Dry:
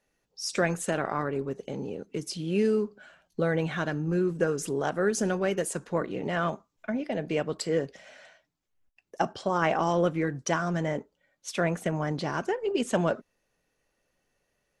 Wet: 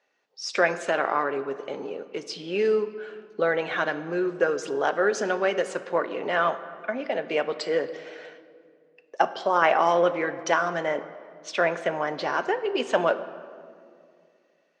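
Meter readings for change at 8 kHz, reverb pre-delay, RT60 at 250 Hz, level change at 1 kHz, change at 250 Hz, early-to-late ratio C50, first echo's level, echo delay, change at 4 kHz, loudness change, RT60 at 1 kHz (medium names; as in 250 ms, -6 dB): -4.0 dB, 5 ms, 2.8 s, +6.5 dB, -3.5 dB, 13.5 dB, no echo, no echo, +4.0 dB, +3.5 dB, 2.0 s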